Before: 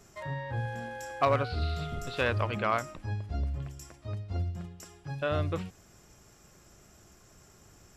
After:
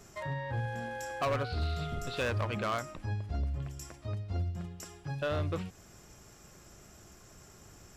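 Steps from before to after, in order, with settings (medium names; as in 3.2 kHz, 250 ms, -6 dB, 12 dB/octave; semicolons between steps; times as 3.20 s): in parallel at 0 dB: compression, threshold -40 dBFS, peak gain reduction 17.5 dB; on the sum: hard clipper -23 dBFS, distortion -13 dB; trim -3.5 dB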